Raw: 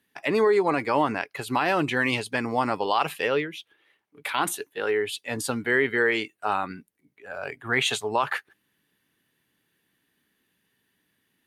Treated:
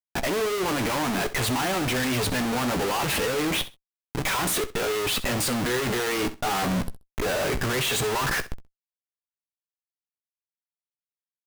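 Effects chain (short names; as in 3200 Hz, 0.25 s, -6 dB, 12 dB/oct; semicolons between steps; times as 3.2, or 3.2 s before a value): low shelf 310 Hz +7.5 dB; compressor 2:1, threshold -24 dBFS, peak gain reduction 5.5 dB; Schmitt trigger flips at -46.5 dBFS; doubler 16 ms -11 dB; on a send: feedback echo 65 ms, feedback 17%, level -15.5 dB; on the sum: gain +3.5 dB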